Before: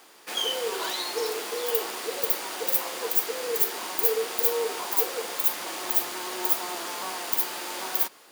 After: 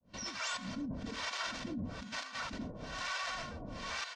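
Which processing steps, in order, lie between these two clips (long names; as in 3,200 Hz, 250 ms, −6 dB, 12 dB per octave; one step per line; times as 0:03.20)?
fade in at the beginning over 0.72 s
comb filter 4.7 ms, depth 71%
wrap-around overflow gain 8 dB
single-sideband voice off tune −340 Hz 190–3,200 Hz
wrong playback speed 7.5 ips tape played at 15 ips
compressor whose output falls as the input rises −35 dBFS, ratio −1
hum removal 364.9 Hz, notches 33
brickwall limiter −32.5 dBFS, peak gain reduction 15 dB
two-band tremolo in antiphase 1.1 Hz, depth 100%, crossover 600 Hz
level +5.5 dB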